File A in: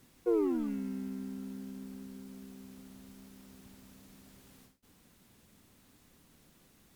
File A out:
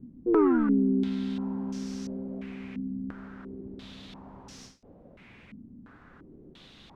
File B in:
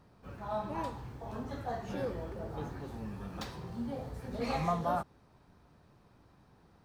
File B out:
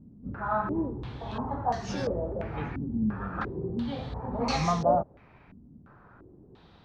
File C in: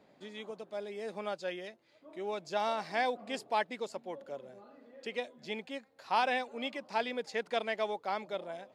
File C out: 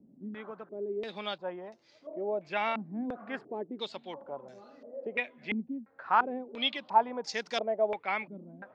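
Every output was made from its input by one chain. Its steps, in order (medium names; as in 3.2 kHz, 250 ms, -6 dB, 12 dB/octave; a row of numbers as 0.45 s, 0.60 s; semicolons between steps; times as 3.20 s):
dynamic bell 530 Hz, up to -5 dB, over -48 dBFS, Q 1.3; step-sequenced low-pass 2.9 Hz 240–5700 Hz; peak normalisation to -12 dBFS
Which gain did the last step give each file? +10.0 dB, +6.5 dB, +2.0 dB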